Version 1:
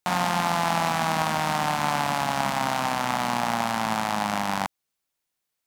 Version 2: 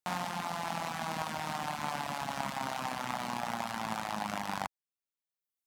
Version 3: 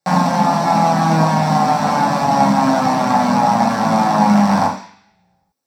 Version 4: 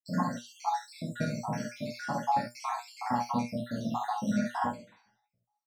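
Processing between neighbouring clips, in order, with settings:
reverb reduction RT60 1.2 s; speech leveller; level −7.5 dB
convolution reverb RT60 0.50 s, pre-delay 3 ms, DRR −7 dB; level +5 dB
time-frequency cells dropped at random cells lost 79%; tuned comb filter 120 Hz, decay 0.16 s, harmonics all, mix 90%; on a send: ambience of single reflections 49 ms −4.5 dB, 67 ms −7.5 dB; on the sum: level −5.5 dB

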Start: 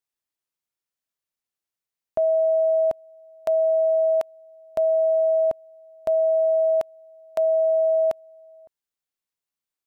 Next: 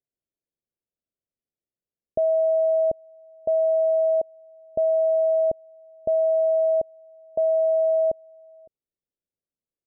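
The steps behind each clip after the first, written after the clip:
Butterworth low-pass 610 Hz 36 dB per octave
level +4 dB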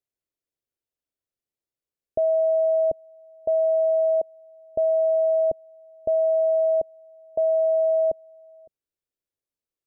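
parametric band 190 Hz −8 dB 0.44 octaves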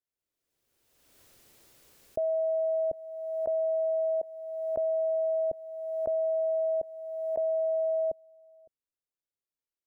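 background raised ahead of every attack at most 33 dB per second
level −7.5 dB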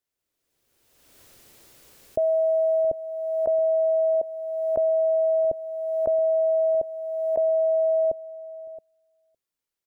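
single-tap delay 672 ms −17.5 dB
level +6.5 dB

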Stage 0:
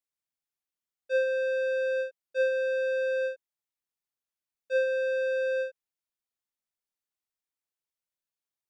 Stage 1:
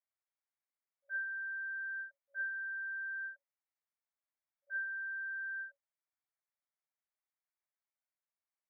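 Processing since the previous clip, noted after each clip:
brick-wall band-pass 550–2,400 Hz
level −1.5 dB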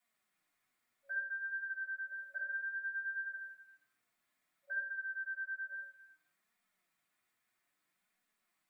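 downward compressor, threshold −46 dBFS, peak gain reduction 10.5 dB
flanger 0.61 Hz, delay 4 ms, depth 4.9 ms, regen +29%
convolution reverb, pre-delay 3 ms, DRR −3.5 dB
level +13.5 dB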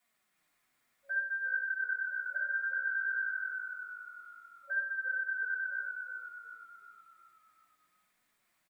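echo with shifted repeats 367 ms, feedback 48%, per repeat −51 Hz, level −5 dB
level +5 dB

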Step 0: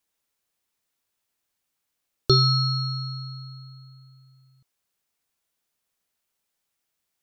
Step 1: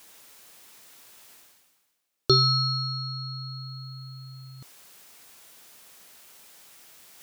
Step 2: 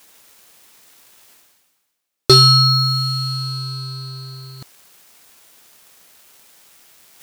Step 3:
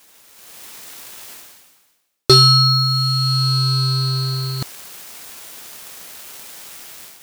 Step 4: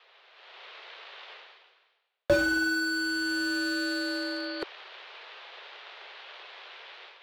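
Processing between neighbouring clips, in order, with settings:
low-shelf EQ 110 Hz −10.5 dB; reversed playback; upward compression, threshold −29 dBFS; reversed playback
leveller curve on the samples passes 2; level +5 dB
automatic gain control gain up to 13.5 dB; level −1 dB
single-sideband voice off tune +190 Hz 190–3,600 Hz; slew-rate limiting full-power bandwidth 100 Hz; level −1.5 dB

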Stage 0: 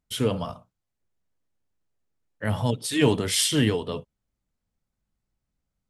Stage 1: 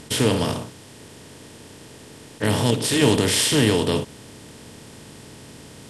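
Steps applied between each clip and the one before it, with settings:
compressor on every frequency bin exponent 0.4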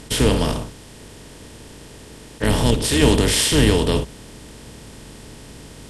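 sub-octave generator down 2 octaves, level −1 dB
level +1.5 dB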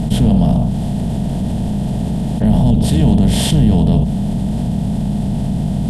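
drawn EQ curve 100 Hz 0 dB, 200 Hz +11 dB, 290 Hz −8 dB, 480 Hz −12 dB, 710 Hz +2 dB, 1,100 Hz −18 dB, 2,300 Hz −20 dB, 3,400 Hz −14 dB, 5,500 Hz −21 dB, 13,000 Hz −16 dB
envelope flattener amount 70%
level +1.5 dB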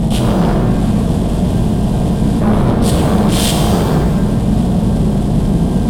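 in parallel at −10 dB: sine wavefolder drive 14 dB, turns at −1 dBFS
on the sum: reverb with rising layers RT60 1.5 s, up +7 semitones, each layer −8 dB, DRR 2.5 dB
level −5 dB

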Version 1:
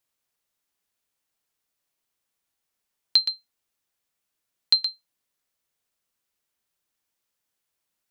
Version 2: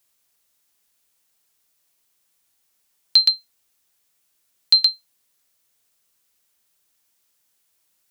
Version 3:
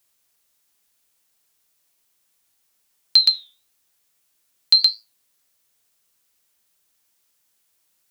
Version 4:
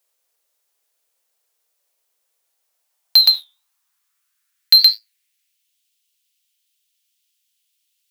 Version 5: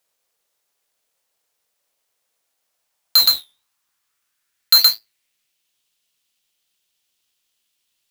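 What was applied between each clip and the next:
high-shelf EQ 3,800 Hz +7.5 dB; brickwall limiter −11.5 dBFS, peak gain reduction 7.5 dB; level +6.5 dB
flanger 1 Hz, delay 8.8 ms, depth 5.7 ms, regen −80%; level +5 dB
leveller curve on the samples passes 2; high-pass filter sweep 500 Hz → 3,000 Hz, 0:02.45–0:05.77
each half-wave held at its own peak; level −4 dB

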